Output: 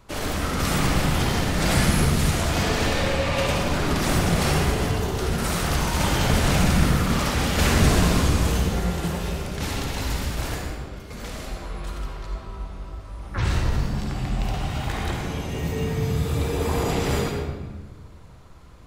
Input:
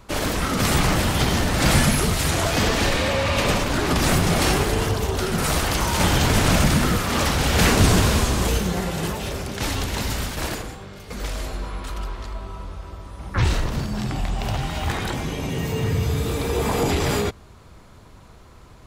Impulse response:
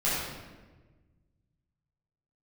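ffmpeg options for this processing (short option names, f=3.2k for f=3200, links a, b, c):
-filter_complex "[0:a]asplit=2[a][b];[1:a]atrim=start_sample=2205,adelay=52[c];[b][c]afir=irnorm=-1:irlink=0,volume=-12dB[d];[a][d]amix=inputs=2:normalize=0,volume=-5.5dB"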